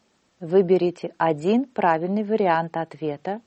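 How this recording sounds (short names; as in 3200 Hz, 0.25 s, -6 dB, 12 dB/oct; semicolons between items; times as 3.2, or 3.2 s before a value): noise floor -66 dBFS; spectral tilt -3.5 dB/oct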